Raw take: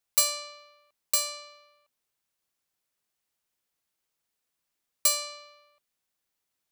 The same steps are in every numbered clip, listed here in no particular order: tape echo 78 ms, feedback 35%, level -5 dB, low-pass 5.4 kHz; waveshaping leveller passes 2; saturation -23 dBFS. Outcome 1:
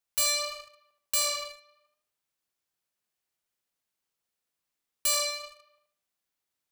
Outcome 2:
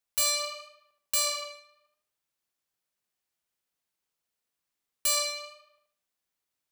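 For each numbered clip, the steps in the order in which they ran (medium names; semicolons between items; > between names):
tape echo > waveshaping leveller > saturation; waveshaping leveller > saturation > tape echo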